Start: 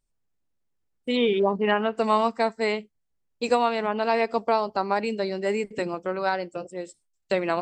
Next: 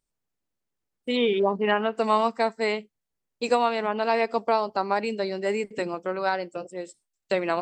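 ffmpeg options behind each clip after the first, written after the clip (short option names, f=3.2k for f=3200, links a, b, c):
-af "lowshelf=f=110:g=-9"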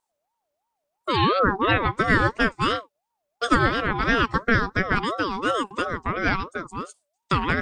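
-af "aeval=exprs='val(0)*sin(2*PI*760*n/s+760*0.25/2.9*sin(2*PI*2.9*n/s))':c=same,volume=5.5dB"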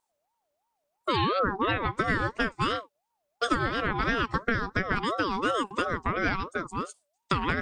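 -af "acompressor=threshold=-22dB:ratio=6"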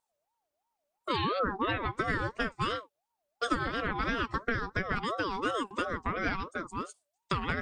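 -af "flanger=delay=1.4:depth=3:regen=-61:speed=0.4:shape=triangular"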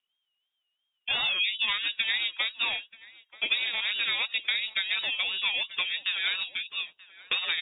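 -filter_complex "[0:a]lowpass=f=3.2k:t=q:w=0.5098,lowpass=f=3.2k:t=q:w=0.6013,lowpass=f=3.2k:t=q:w=0.9,lowpass=f=3.2k:t=q:w=2.563,afreqshift=-3800,asplit=2[a][b];[b]adelay=932.9,volume=-16dB,highshelf=f=4k:g=-21[c];[a][c]amix=inputs=2:normalize=0,volume=2.5dB"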